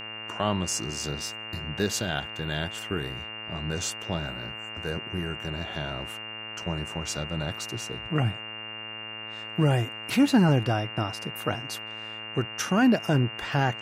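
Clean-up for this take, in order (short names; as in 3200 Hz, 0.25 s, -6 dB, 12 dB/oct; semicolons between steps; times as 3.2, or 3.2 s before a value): de-hum 109.6 Hz, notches 26; notch 2800 Hz, Q 30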